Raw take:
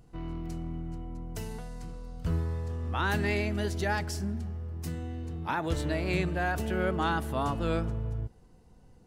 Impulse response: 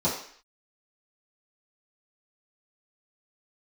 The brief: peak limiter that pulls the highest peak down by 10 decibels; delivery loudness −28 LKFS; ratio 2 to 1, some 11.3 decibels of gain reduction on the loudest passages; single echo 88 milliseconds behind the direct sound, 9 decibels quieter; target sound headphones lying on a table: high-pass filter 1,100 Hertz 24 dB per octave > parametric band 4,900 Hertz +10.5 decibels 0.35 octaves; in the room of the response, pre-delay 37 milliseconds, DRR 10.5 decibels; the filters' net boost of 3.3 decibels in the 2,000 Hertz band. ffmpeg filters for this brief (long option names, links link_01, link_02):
-filter_complex "[0:a]equalizer=frequency=2000:width_type=o:gain=4.5,acompressor=threshold=-45dB:ratio=2,alimiter=level_in=10.5dB:limit=-24dB:level=0:latency=1,volume=-10.5dB,aecho=1:1:88:0.355,asplit=2[link_01][link_02];[1:a]atrim=start_sample=2205,adelay=37[link_03];[link_02][link_03]afir=irnorm=-1:irlink=0,volume=-22dB[link_04];[link_01][link_04]amix=inputs=2:normalize=0,highpass=frequency=1100:width=0.5412,highpass=frequency=1100:width=1.3066,equalizer=frequency=4900:width_type=o:width=0.35:gain=10.5,volume=21.5dB"